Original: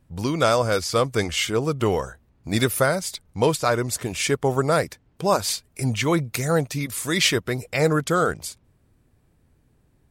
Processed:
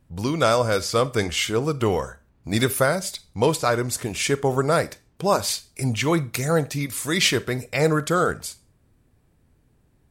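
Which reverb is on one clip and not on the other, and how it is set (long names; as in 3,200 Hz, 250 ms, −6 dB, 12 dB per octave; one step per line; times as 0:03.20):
four-comb reverb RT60 0.32 s, combs from 28 ms, DRR 16.5 dB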